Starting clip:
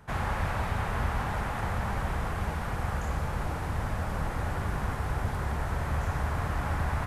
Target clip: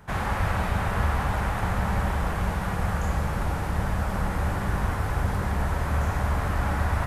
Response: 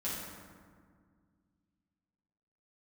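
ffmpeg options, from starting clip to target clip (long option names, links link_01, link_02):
-filter_complex "[0:a]asplit=2[link_01][link_02];[1:a]atrim=start_sample=2205,highshelf=frequency=9800:gain=10.5[link_03];[link_02][link_03]afir=irnorm=-1:irlink=0,volume=-9.5dB[link_04];[link_01][link_04]amix=inputs=2:normalize=0,volume=2dB"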